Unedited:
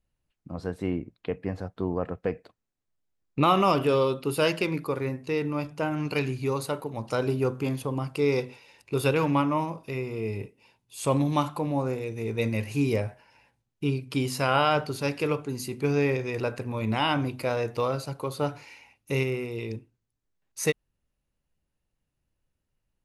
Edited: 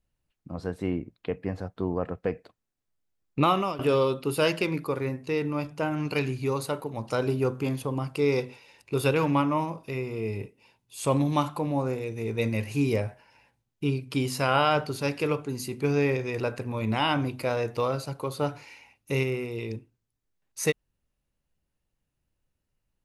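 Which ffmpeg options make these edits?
-filter_complex "[0:a]asplit=2[s0][s1];[s0]atrim=end=3.79,asetpts=PTS-STARTPTS,afade=t=out:st=3.43:d=0.36:silence=0.141254[s2];[s1]atrim=start=3.79,asetpts=PTS-STARTPTS,afade=t=in:d=0.004:c=hsin:silence=0.141254[s3];[s2][s3]concat=n=2:v=0:a=1"

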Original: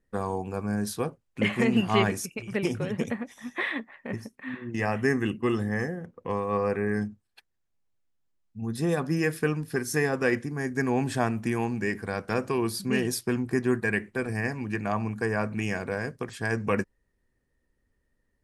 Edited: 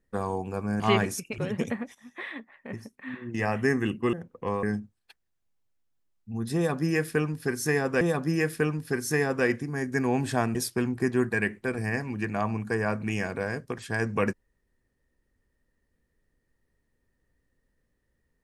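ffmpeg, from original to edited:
-filter_complex "[0:a]asplit=8[s0][s1][s2][s3][s4][s5][s6][s7];[s0]atrim=end=0.802[s8];[s1]atrim=start=1.858:end=2.442[s9];[s2]atrim=start=2.778:end=3.35,asetpts=PTS-STARTPTS,afade=t=out:st=0.568:d=0.004:c=hsin:silence=0.237137[s10];[s3]atrim=start=3.35:end=5.532,asetpts=PTS-STARTPTS,afade=t=in:d=1.5:silence=0.237137[s11];[s4]atrim=start=5.958:end=6.462[s12];[s5]atrim=start=6.908:end=10.292[s13];[s6]atrim=start=8.838:end=11.382[s14];[s7]atrim=start=13.058[s15];[s8][s9]acrossfade=d=0.004:c1=hsin:c2=hsin[s16];[s10][s11]concat=n=2:v=0:a=1[s17];[s16][s17]acrossfade=d=0.004:c1=hsin:c2=hsin[s18];[s18][s12]acrossfade=d=0.004:c1=hsin:c2=hsin[s19];[s19][s13]acrossfade=d=0.004:c1=hsin:c2=hsin[s20];[s20][s14]acrossfade=d=0.004:c1=hsin:c2=hsin[s21];[s21][s15]acrossfade=d=0.004:c1=hsin:c2=hsin"

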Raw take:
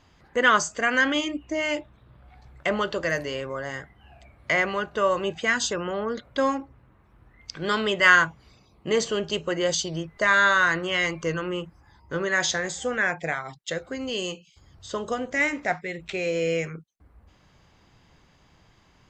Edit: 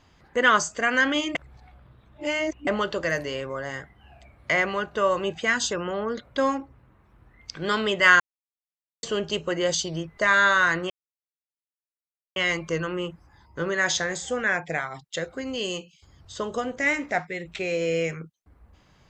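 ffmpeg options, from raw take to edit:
-filter_complex "[0:a]asplit=6[s0][s1][s2][s3][s4][s5];[s0]atrim=end=1.352[s6];[s1]atrim=start=1.348:end=2.672,asetpts=PTS-STARTPTS,areverse[s7];[s2]atrim=start=2.668:end=8.2,asetpts=PTS-STARTPTS,afade=t=out:st=5.528:d=0.004:c=hsin[s8];[s3]atrim=start=8.2:end=9.03,asetpts=PTS-STARTPTS,volume=0[s9];[s4]atrim=start=9.03:end=10.9,asetpts=PTS-STARTPTS,afade=t=in:d=0.004:c=hsin,afade=t=out:st=1.866:d=0.004:c=hsin,apad=pad_dur=1.46[s10];[s5]atrim=start=10.9,asetpts=PTS-STARTPTS,afade=t=in:d=0.004:c=hsin[s11];[s6][s7]acrossfade=d=0.004:c1=hsin:c2=hsin[s12];[s8][s9][s10][s11]concat=n=4:v=0:a=1[s13];[s12][s13]acrossfade=d=0.004:c1=hsin:c2=hsin"

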